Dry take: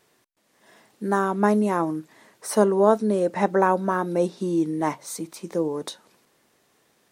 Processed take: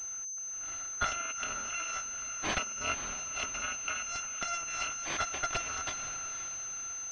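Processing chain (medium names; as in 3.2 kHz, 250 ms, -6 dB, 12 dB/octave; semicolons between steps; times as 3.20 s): bit-reversed sample order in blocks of 256 samples; 1.19–2.76 s: elliptic high-pass 210 Hz; low-pass that closes with the level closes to 1.4 kHz, closed at -17.5 dBFS; tilt EQ +3.5 dB/octave; integer overflow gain 16 dB; echo that smears into a reverb 526 ms, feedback 49%, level -10 dB; class-D stage that switches slowly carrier 6.2 kHz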